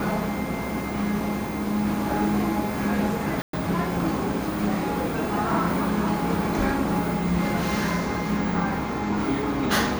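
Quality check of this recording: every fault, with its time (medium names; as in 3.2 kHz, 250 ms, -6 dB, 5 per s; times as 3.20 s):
3.42–3.53 s: dropout 113 ms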